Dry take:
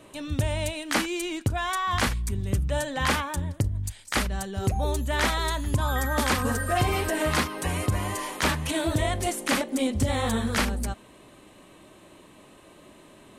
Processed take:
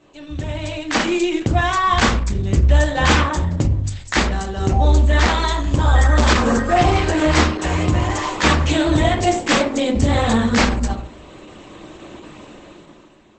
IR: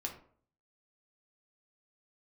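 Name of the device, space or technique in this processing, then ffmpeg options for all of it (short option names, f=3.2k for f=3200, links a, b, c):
speakerphone in a meeting room: -filter_complex "[1:a]atrim=start_sample=2205[a];[0:a][a]afir=irnorm=-1:irlink=0,dynaudnorm=f=120:g=13:m=15dB,volume=-1dB" -ar 48000 -c:a libopus -b:a 12k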